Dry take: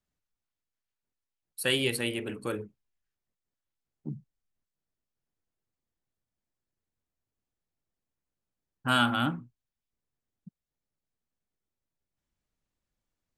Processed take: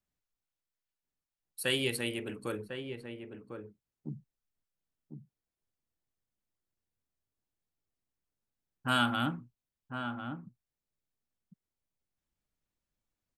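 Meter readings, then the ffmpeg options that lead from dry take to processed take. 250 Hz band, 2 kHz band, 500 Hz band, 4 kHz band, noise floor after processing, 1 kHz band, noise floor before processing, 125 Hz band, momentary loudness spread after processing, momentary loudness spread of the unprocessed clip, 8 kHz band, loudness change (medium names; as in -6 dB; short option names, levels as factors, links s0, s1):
-2.5 dB, -3.0 dB, -3.0 dB, -3.5 dB, under -85 dBFS, -3.0 dB, under -85 dBFS, -2.5 dB, 21 LU, 20 LU, -3.5 dB, -5.5 dB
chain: -filter_complex "[0:a]asplit=2[s0][s1];[s1]adelay=1050,volume=0.447,highshelf=f=4000:g=-23.6[s2];[s0][s2]amix=inputs=2:normalize=0,volume=0.668"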